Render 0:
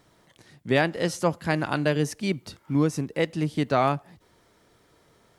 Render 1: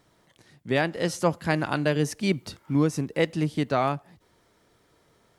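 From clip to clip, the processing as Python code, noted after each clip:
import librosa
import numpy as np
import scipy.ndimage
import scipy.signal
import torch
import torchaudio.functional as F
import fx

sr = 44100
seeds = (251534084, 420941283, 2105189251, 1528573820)

y = fx.rider(x, sr, range_db=3, speed_s=0.5)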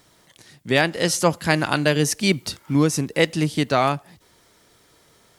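y = fx.high_shelf(x, sr, hz=2500.0, db=9.5)
y = y * 10.0 ** (4.0 / 20.0)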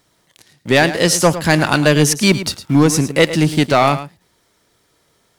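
y = fx.leveller(x, sr, passes=2)
y = y + 10.0 ** (-13.0 / 20.0) * np.pad(y, (int(108 * sr / 1000.0), 0))[:len(y)]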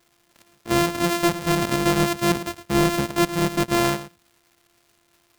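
y = np.r_[np.sort(x[:len(x) // 128 * 128].reshape(-1, 128), axis=1).ravel(), x[len(x) // 128 * 128:]]
y = fx.dmg_crackle(y, sr, seeds[0], per_s=470.0, level_db=-40.0)
y = y * 10.0 ** (-7.5 / 20.0)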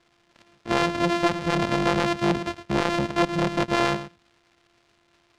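y = scipy.signal.sosfilt(scipy.signal.butter(2, 4600.0, 'lowpass', fs=sr, output='sos'), x)
y = fx.transformer_sat(y, sr, knee_hz=530.0)
y = y * 10.0 ** (1.0 / 20.0)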